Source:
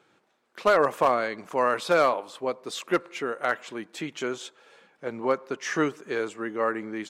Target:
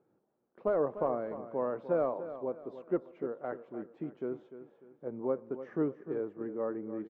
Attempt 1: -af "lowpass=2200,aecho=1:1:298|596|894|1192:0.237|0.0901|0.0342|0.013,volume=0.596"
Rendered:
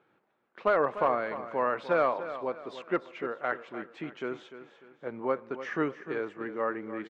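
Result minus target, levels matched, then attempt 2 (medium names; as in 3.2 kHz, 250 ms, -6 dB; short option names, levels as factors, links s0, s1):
2 kHz band +13.0 dB
-af "lowpass=560,aecho=1:1:298|596|894|1192:0.237|0.0901|0.0342|0.013,volume=0.596"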